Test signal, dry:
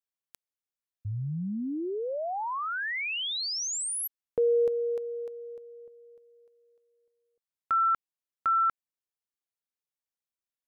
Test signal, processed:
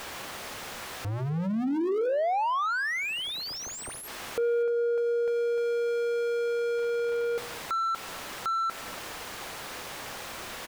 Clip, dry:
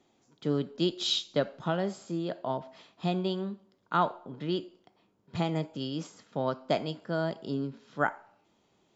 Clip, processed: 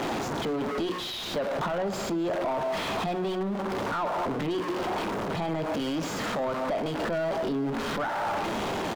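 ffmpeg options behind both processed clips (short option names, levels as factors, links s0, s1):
-filter_complex "[0:a]aeval=exprs='val(0)+0.5*0.0376*sgn(val(0))':c=same,bandreject=f=60:t=h:w=6,bandreject=f=120:t=h:w=6,bandreject=f=180:t=h:w=6,bandreject=f=240:t=h:w=6,bandreject=f=300:t=h:w=6,bandreject=f=360:t=h:w=6,bandreject=f=420:t=h:w=6,bandreject=f=480:t=h:w=6,acompressor=threshold=0.0316:ratio=6:attack=3.1:release=302:detection=peak,asplit=2[s0][s1];[s1]highpass=f=720:p=1,volume=17.8,asoftclip=type=tanh:threshold=0.112[s2];[s0][s2]amix=inputs=2:normalize=0,lowpass=f=1100:p=1,volume=0.501,aecho=1:1:251:0.075"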